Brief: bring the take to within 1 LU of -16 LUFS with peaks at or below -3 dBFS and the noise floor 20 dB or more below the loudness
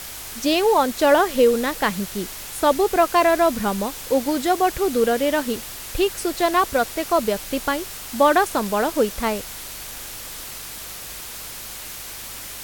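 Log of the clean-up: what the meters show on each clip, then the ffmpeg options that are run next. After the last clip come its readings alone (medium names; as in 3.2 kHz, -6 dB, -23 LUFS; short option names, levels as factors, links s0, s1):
hum 50 Hz; highest harmonic 150 Hz; hum level -48 dBFS; noise floor -35 dBFS; noise floor target -41 dBFS; loudness -20.5 LUFS; peak level -4.0 dBFS; loudness target -16.0 LUFS
-> -af "bandreject=f=50:t=h:w=4,bandreject=f=100:t=h:w=4,bandreject=f=150:t=h:w=4"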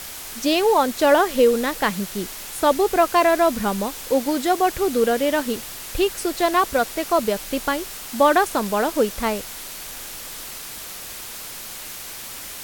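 hum not found; noise floor -35 dBFS; noise floor target -41 dBFS
-> -af "afftdn=nr=6:nf=-35"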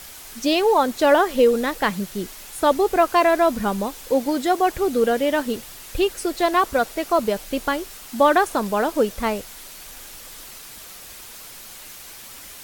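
noise floor -40 dBFS; noise floor target -41 dBFS
-> -af "afftdn=nr=6:nf=-40"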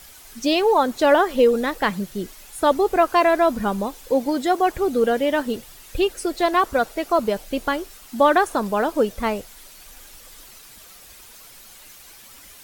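noise floor -45 dBFS; loudness -20.5 LUFS; peak level -4.5 dBFS; loudness target -16.0 LUFS
-> -af "volume=1.68,alimiter=limit=0.708:level=0:latency=1"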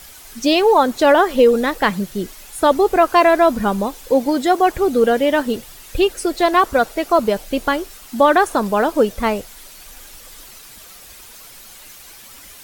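loudness -16.5 LUFS; peak level -3.0 dBFS; noise floor -41 dBFS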